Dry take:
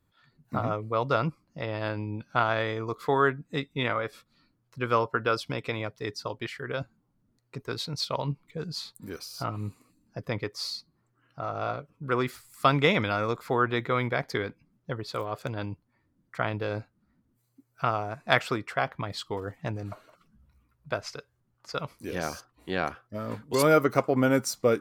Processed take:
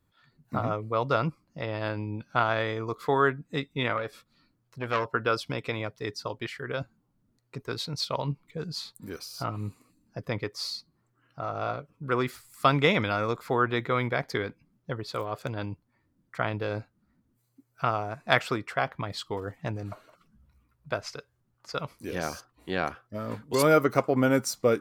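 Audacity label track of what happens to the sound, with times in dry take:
3.970000	5.120000	saturating transformer saturates under 1,500 Hz

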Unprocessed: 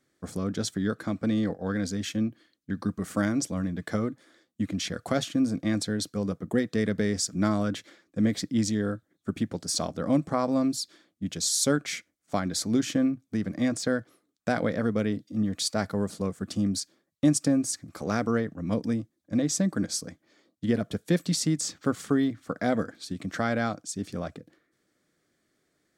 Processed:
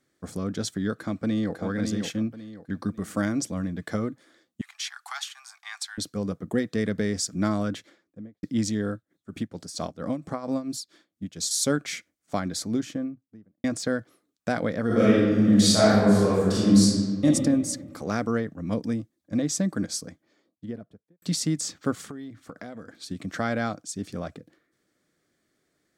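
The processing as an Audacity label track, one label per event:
0.960000	1.550000	delay throw 550 ms, feedback 30%, level −5 dB
4.610000	5.980000	Butterworth high-pass 790 Hz 96 dB per octave
7.640000	8.430000	fade out and dull
8.930000	11.510000	amplitude tremolo 4.4 Hz, depth 78%
12.370000	13.640000	fade out and dull
14.860000	17.240000	thrown reverb, RT60 1.6 s, DRR −10 dB
19.890000	21.220000	fade out and dull
22.060000	23.030000	downward compressor, threshold −36 dBFS

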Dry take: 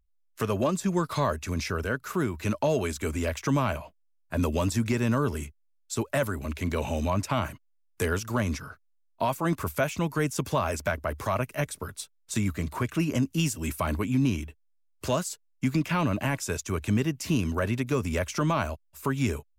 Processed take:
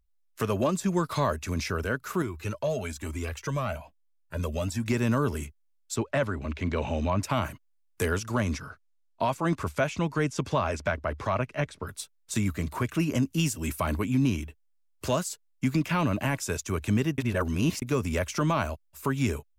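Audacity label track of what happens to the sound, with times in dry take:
2.220000	4.880000	flanger whose copies keep moving one way rising 1.1 Hz
5.960000	7.220000	low-pass filter 4,200 Hz
8.110000	11.860000	low-pass filter 11,000 Hz → 4,000 Hz
17.180000	17.820000	reverse

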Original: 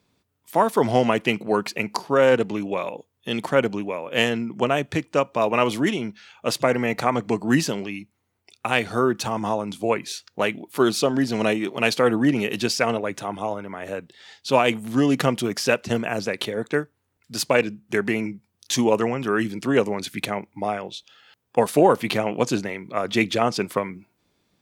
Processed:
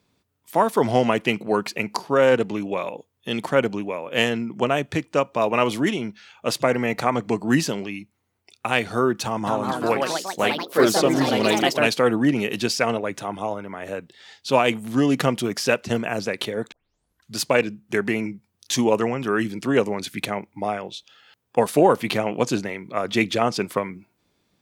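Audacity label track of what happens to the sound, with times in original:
9.250000	12.110000	delay with pitch and tempo change per echo 218 ms, each echo +3 semitones, echoes 3
16.720000	16.720000	tape start 0.65 s

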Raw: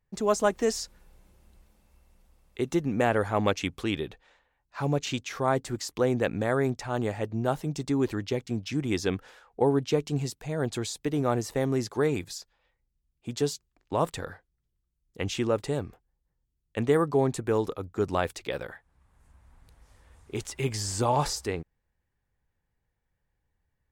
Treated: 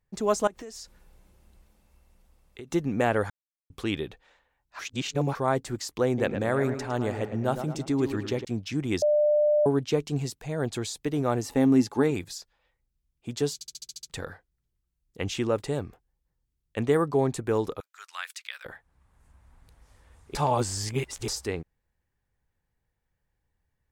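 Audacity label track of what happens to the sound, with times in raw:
0.470000	2.710000	downward compressor 8 to 1, threshold −38 dBFS
3.300000	3.700000	silence
4.790000	5.350000	reverse
6.070000	8.450000	tape delay 109 ms, feedback 52%, level −7.5 dB, low-pass 3,200 Hz
9.020000	9.660000	beep over 597 Hz −18.5 dBFS
11.420000	12.110000	hollow resonant body resonances 260/840/2,700 Hz, height 12 dB, ringing for 85 ms
13.540000	13.540000	stutter in place 0.07 s, 8 plays
17.800000	18.650000	high-pass filter 1,400 Hz 24 dB per octave
20.350000	21.280000	reverse

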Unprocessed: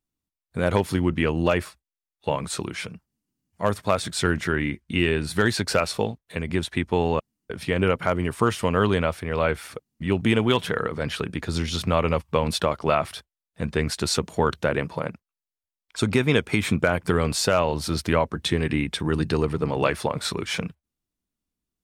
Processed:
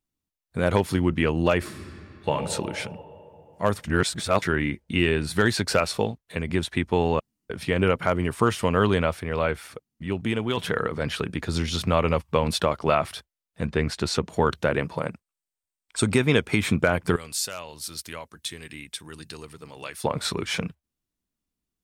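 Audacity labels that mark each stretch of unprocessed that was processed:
1.580000	2.310000	thrown reverb, RT60 3 s, DRR 0.5 dB
3.840000	4.420000	reverse
9.130000	10.570000	fade out quadratic, to −6 dB
13.670000	14.330000	high-shelf EQ 6,700 Hz −11 dB
14.980000	16.180000	parametric band 8,400 Hz +10 dB 0.26 octaves
17.160000	20.040000	first-order pre-emphasis coefficient 0.9

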